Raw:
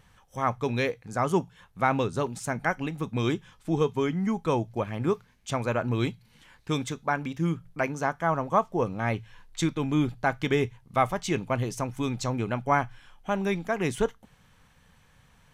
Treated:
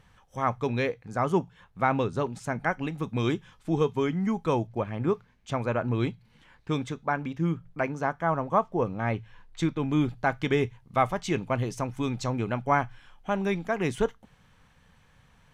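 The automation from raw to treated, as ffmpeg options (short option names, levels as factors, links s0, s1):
-af "asetnsamples=n=441:p=0,asendcmd='0.67 lowpass f 3100;2.83 lowpass f 6300;4.67 lowpass f 2400;9.91 lowpass f 5400',lowpass=f=5200:p=1"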